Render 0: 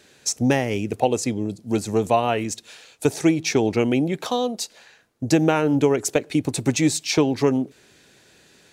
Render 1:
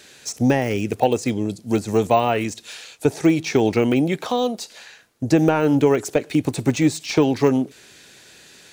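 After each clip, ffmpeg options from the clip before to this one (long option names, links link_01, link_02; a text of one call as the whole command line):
ffmpeg -i in.wav -af "tiltshelf=frequency=1200:gain=-3.5,deesser=1,volume=5.5dB" out.wav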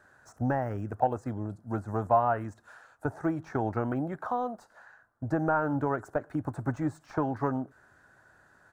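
ffmpeg -i in.wav -af "firequalizer=gain_entry='entry(100,0);entry(170,-8);entry(300,-8);entry(440,-12);entry(620,-1);entry(1500,3);entry(2300,-25);entry(3500,-28);entry(8000,-21)':delay=0.05:min_phase=1,volume=-5dB" out.wav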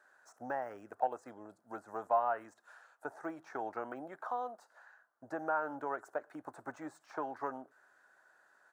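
ffmpeg -i in.wav -af "highpass=500,volume=-5.5dB" out.wav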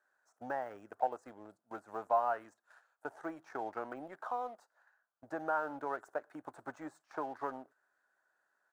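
ffmpeg -i in.wav -filter_complex "[0:a]agate=range=-8dB:threshold=-57dB:ratio=16:detection=peak,asplit=2[link_01][link_02];[link_02]aeval=exprs='sgn(val(0))*max(abs(val(0))-0.002,0)':channel_layout=same,volume=-4.5dB[link_03];[link_01][link_03]amix=inputs=2:normalize=0,volume=-4dB" out.wav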